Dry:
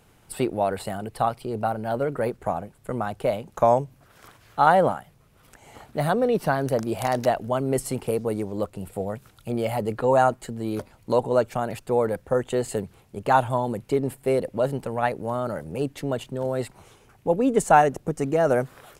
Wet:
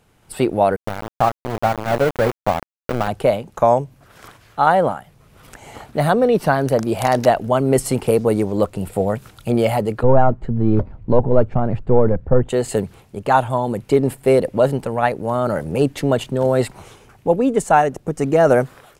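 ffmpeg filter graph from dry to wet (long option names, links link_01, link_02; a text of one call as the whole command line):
ffmpeg -i in.wav -filter_complex "[0:a]asettb=1/sr,asplit=3[link_01][link_02][link_03];[link_01]atrim=end=0.764[link_04];[link_02]atrim=start=0.76:end=3.08,asetpts=PTS-STARTPTS,afade=type=in:duration=0.004:curve=qsin,afade=type=out:start_time=2.316:duration=0.004:curve=qsin,aeval=exprs='val(0)*gte(abs(val(0)),0.0562)':channel_layout=same,equalizer=frequency=7100:width=0.32:gain=-9.5[link_05];[link_03]atrim=start=3.076[link_06];[link_04][link_05]acrossfade=duration=0.004:curve1=hsin:curve2=qsin[link_07];[link_07][link_06]acrossfade=duration=0.004:curve1=qsin:curve2=hsin,asettb=1/sr,asplit=3[link_08][link_09][link_10];[link_08]atrim=end=10.034[link_11];[link_09]atrim=start=10.03:end=12.49,asetpts=PTS-STARTPTS,afade=type=in:duration=0.004:curve=qsin,afade=type=out:start_time=2.456:duration=0.004:curve=qsin,aeval=exprs='if(lt(val(0),0),0.708*val(0),val(0))':channel_layout=same,lowpass=frequency=1700:poles=1,aemphasis=mode=reproduction:type=riaa[link_12];[link_10]atrim=start=12.486[link_13];[link_11][link_12]acrossfade=duration=0.004:curve1=hsin:curve2=qsin[link_14];[link_14][link_13]acrossfade=duration=0.004:curve1=qsin:curve2=hsin,highshelf=frequency=11000:gain=-4.5,dynaudnorm=framelen=100:gausssize=7:maxgain=12dB,volume=-1dB" out.wav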